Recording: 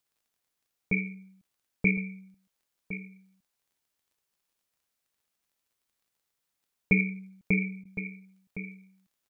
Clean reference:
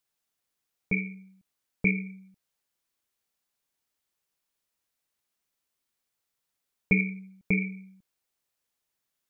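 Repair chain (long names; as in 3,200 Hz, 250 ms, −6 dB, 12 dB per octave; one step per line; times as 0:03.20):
click removal
repair the gap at 0:07.84, 11 ms
echo removal 1,061 ms −12.5 dB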